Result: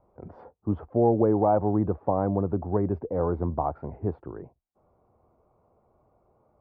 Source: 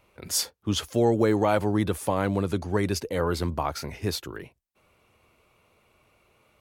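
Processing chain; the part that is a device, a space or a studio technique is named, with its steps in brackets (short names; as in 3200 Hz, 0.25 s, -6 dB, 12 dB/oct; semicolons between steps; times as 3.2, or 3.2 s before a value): under water (LPF 990 Hz 24 dB/oct; bell 740 Hz +5 dB 0.34 oct)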